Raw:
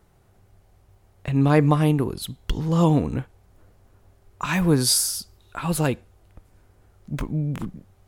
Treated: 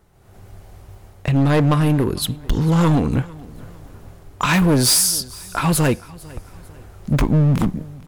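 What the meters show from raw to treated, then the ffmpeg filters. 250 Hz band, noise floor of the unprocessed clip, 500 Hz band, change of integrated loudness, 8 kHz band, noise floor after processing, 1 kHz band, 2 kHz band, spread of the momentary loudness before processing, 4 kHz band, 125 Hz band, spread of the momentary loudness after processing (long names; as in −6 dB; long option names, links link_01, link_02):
+4.5 dB, −59 dBFS, +3.0 dB, +4.5 dB, +6.0 dB, −46 dBFS, +4.5 dB, +6.0 dB, 15 LU, +5.5 dB, +5.0 dB, 14 LU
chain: -filter_complex "[0:a]dynaudnorm=framelen=120:gausssize=5:maxgain=13dB,asoftclip=type=hard:threshold=-14dB,asplit=2[link_01][link_02];[link_02]aecho=0:1:449|898|1347:0.0794|0.031|0.0121[link_03];[link_01][link_03]amix=inputs=2:normalize=0,volume=2dB"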